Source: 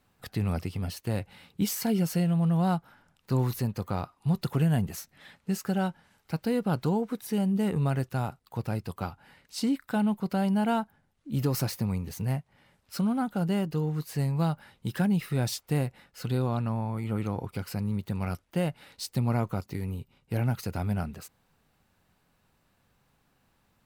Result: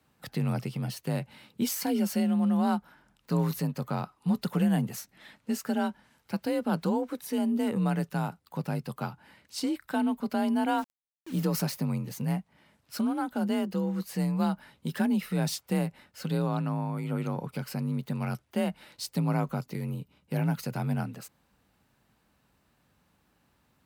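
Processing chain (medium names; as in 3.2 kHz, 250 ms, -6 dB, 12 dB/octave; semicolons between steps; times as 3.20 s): dynamic bell 270 Hz, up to -4 dB, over -42 dBFS, Q 2.3; frequency shift +39 Hz; 10.78–11.43 s: word length cut 8-bit, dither none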